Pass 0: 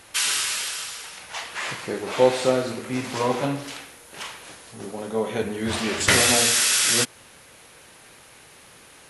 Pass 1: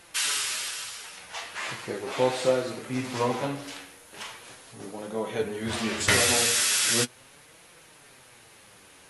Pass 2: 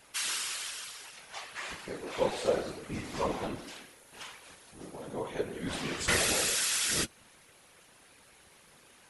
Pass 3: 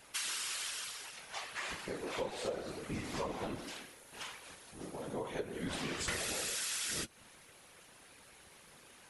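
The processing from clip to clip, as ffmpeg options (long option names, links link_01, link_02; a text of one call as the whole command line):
ffmpeg -i in.wav -af "flanger=delay=5.6:depth=5.3:regen=43:speed=0.39:shape=triangular" out.wav
ffmpeg -i in.wav -af "afftfilt=real='hypot(re,im)*cos(2*PI*random(0))':imag='hypot(re,im)*sin(2*PI*random(1))':win_size=512:overlap=0.75" out.wav
ffmpeg -i in.wav -af "acompressor=threshold=-35dB:ratio=6" out.wav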